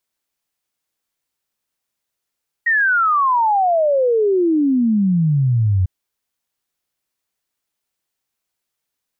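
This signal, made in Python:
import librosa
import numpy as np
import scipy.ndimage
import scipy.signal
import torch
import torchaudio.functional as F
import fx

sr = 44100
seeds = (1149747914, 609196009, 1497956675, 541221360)

y = fx.ess(sr, length_s=3.2, from_hz=1900.0, to_hz=89.0, level_db=-12.5)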